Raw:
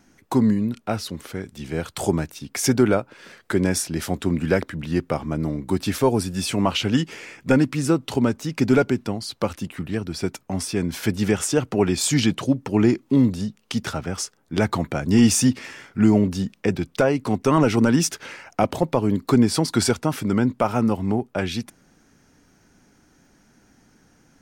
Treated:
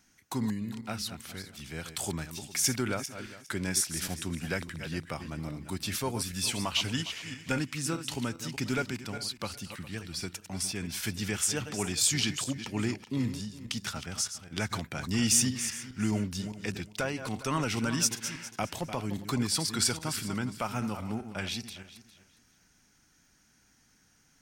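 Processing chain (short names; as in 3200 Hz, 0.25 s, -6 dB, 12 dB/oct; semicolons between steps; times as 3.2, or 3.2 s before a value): regenerating reverse delay 0.204 s, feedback 42%, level -10 dB; passive tone stack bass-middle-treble 5-5-5; gain +4 dB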